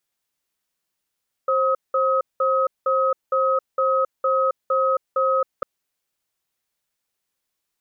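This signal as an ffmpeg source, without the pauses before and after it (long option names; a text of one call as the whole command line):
ffmpeg -f lavfi -i "aevalsrc='0.106*(sin(2*PI*530*t)+sin(2*PI*1270*t))*clip(min(mod(t,0.46),0.27-mod(t,0.46))/0.005,0,1)':duration=4.15:sample_rate=44100" out.wav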